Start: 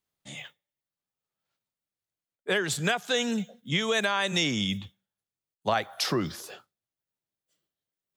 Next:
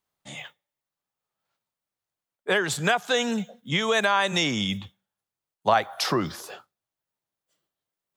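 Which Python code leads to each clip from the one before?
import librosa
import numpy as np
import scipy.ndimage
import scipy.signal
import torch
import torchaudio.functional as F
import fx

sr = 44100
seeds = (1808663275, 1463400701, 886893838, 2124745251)

y = fx.peak_eq(x, sr, hz=930.0, db=6.5, octaves=1.5)
y = y * librosa.db_to_amplitude(1.0)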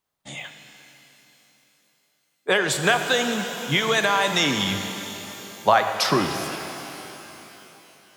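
y = fx.hpss(x, sr, part='percussive', gain_db=4)
y = fx.rev_shimmer(y, sr, seeds[0], rt60_s=3.4, semitones=12, shimmer_db=-8, drr_db=6.0)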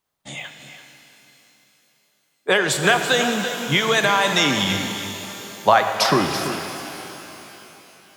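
y = x + 10.0 ** (-11.0 / 20.0) * np.pad(x, (int(332 * sr / 1000.0), 0))[:len(x)]
y = y * librosa.db_to_amplitude(2.5)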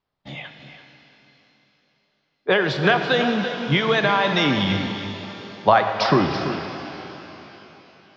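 y = scipy.signal.sosfilt(scipy.signal.butter(8, 5300.0, 'lowpass', fs=sr, output='sos'), x)
y = fx.tilt_eq(y, sr, slope=-1.5)
y = y * librosa.db_to_amplitude(-1.0)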